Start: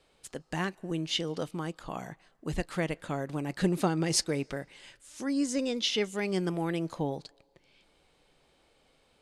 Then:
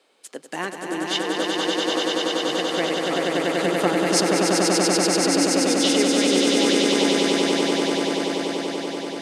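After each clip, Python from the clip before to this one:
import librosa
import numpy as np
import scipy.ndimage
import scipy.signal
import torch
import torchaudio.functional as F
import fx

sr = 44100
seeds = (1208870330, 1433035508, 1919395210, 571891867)

y = scipy.signal.sosfilt(scipy.signal.butter(4, 250.0, 'highpass', fs=sr, output='sos'), x)
y = fx.echo_swell(y, sr, ms=96, loudest=8, wet_db=-3.5)
y = F.gain(torch.from_numpy(y), 5.0).numpy()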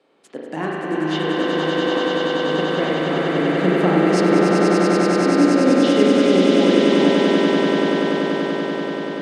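y = fx.riaa(x, sr, side='playback')
y = fx.rev_spring(y, sr, rt60_s=2.3, pass_ms=(38,), chirp_ms=25, drr_db=-3.0)
y = F.gain(torch.from_numpy(y), -1.0).numpy()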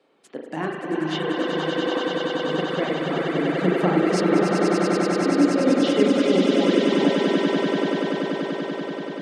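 y = fx.dereverb_blind(x, sr, rt60_s=0.97)
y = F.gain(torch.from_numpy(y), -1.5).numpy()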